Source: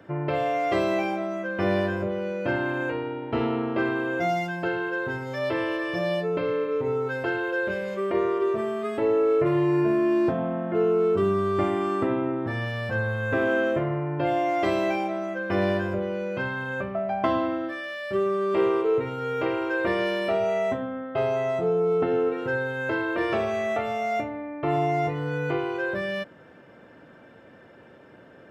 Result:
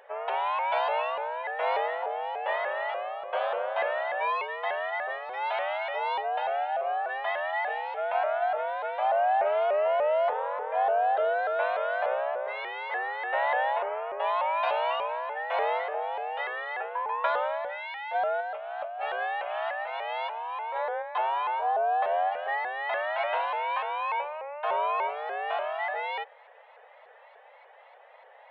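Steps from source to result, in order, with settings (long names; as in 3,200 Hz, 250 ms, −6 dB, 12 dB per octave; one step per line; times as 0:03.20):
0:18.40–0:21.02: compressor whose output falls as the input rises −30 dBFS, ratio −1
single-sideband voice off tune +290 Hz 190–3,500 Hz
pitch modulation by a square or saw wave saw up 3.4 Hz, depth 160 cents
level −3 dB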